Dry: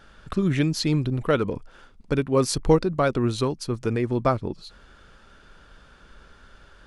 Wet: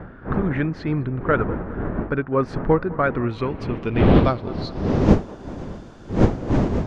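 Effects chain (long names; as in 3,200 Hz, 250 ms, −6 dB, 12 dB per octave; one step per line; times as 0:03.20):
wind on the microphone 300 Hz −22 dBFS
bit reduction 11 bits
low-pass filter sweep 1,600 Hz → 6,700 Hz, 0:02.94–0:05.18
on a send: feedback echo with a band-pass in the loop 205 ms, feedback 72%, band-pass 900 Hz, level −18 dB
on the sum: level −1 dB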